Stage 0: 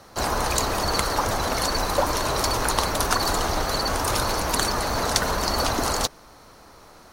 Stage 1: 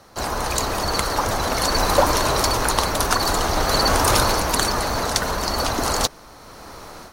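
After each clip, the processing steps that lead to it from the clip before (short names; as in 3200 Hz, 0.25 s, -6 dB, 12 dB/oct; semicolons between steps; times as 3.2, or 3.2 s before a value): AGC gain up to 11.5 dB; gain -1 dB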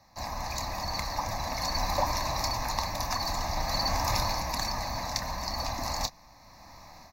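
fixed phaser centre 2100 Hz, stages 8; doubler 28 ms -11.5 dB; gain -8.5 dB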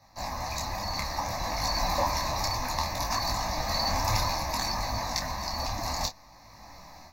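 detuned doubles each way 21 cents; gain +5 dB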